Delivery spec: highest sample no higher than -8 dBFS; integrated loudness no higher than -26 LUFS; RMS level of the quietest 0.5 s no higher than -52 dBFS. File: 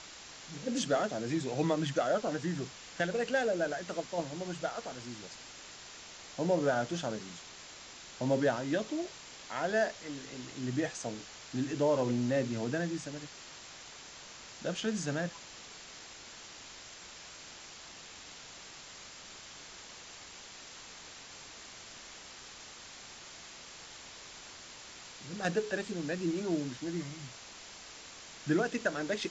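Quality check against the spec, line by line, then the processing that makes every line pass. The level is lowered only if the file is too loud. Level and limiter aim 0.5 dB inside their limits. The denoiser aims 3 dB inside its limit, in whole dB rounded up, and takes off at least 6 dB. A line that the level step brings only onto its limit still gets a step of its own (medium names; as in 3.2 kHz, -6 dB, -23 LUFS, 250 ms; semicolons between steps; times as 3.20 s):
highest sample -17.0 dBFS: pass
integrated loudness -34.5 LUFS: pass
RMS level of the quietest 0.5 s -50 dBFS: fail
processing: noise reduction 6 dB, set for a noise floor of -50 dBFS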